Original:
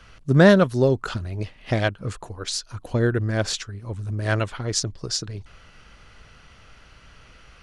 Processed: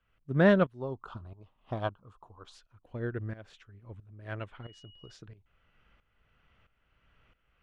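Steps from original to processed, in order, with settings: band shelf 6900 Hz -15.5 dB; tremolo saw up 1.5 Hz, depth 80%; 0.8–2.55 EQ curve 550 Hz 0 dB, 1100 Hz +11 dB, 2000 Hz -14 dB, 3400 Hz 0 dB; 4.62–5.11 whine 2900 Hz -41 dBFS; upward expander 1.5:1, over -31 dBFS; gain -5.5 dB

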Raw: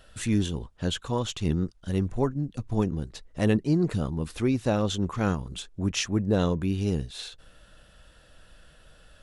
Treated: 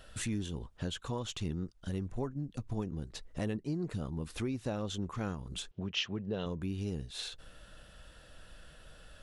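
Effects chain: compressor 3:1, threshold -36 dBFS, peak gain reduction 14 dB; 5.71–6.46 speaker cabinet 110–5000 Hz, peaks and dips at 290 Hz -8 dB, 410 Hz +4 dB, 3000 Hz +10 dB

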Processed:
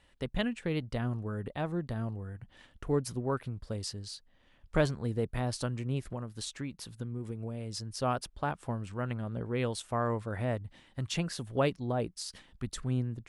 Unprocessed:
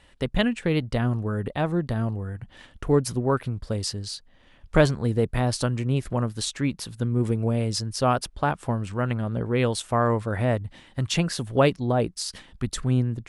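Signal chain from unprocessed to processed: 6.05–7.95 compressor, threshold -25 dBFS, peak gain reduction 7.5 dB; gain -9 dB

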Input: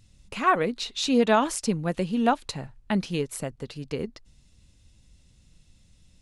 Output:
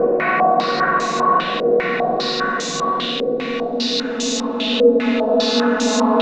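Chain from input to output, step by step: flutter echo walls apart 7.9 m, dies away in 0.52 s; Paulstretch 10×, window 1.00 s, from 0.55; stepped low-pass 5 Hz 500–6700 Hz; gain +2 dB

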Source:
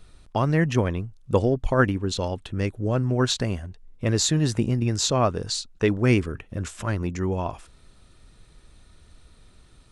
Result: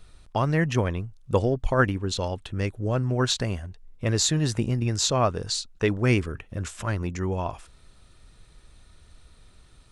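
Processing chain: bell 260 Hz -3.5 dB 1.7 oct

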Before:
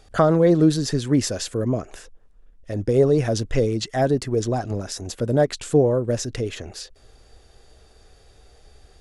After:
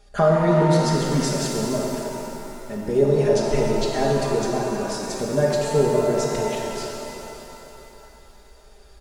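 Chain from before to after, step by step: comb 4.9 ms, depth 89%; shimmer reverb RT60 3.1 s, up +7 st, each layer -8 dB, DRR -2 dB; gain -6 dB

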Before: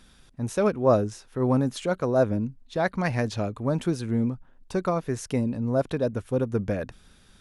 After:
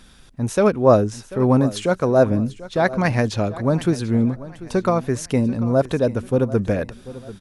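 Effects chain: feedback echo 0.74 s, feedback 38%, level -17 dB; gain +6.5 dB

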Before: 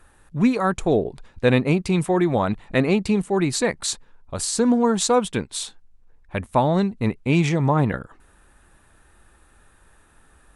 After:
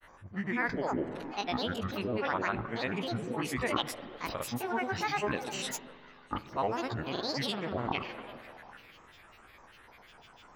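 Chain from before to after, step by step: spectral dilation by 60 ms; reverse; compressor 6:1, threshold -26 dBFS, peak gain reduction 15 dB; reverse; polynomial smoothing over 25 samples; tilt +3 dB/oct; delay with a stepping band-pass 0.146 s, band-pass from 240 Hz, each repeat 0.7 oct, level -7 dB; grains, pitch spread up and down by 12 st; reverb RT60 2.9 s, pre-delay 43 ms, DRR 15.5 dB

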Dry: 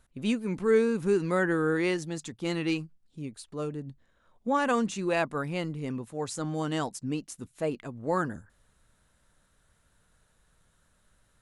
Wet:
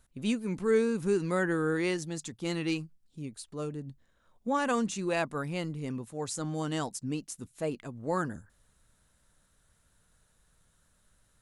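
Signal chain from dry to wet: tone controls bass +2 dB, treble +5 dB; gain -3 dB

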